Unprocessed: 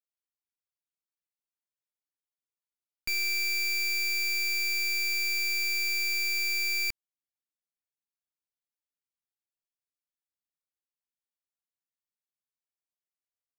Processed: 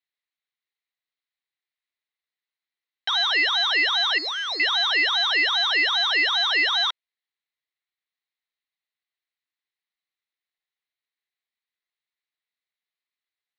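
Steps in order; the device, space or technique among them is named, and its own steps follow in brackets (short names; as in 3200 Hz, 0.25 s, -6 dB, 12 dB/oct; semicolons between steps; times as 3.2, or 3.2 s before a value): 4.18–4.6 Chebyshev band-stop 1900–4300 Hz, order 4; voice changer toy (ring modulator with a swept carrier 970 Hz, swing 70%, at 2.5 Hz; speaker cabinet 490–4000 Hz, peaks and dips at 560 Hz -8 dB, 890 Hz -5 dB, 1400 Hz -3 dB, 2000 Hz +9 dB, 4000 Hz +9 dB); gain +8.5 dB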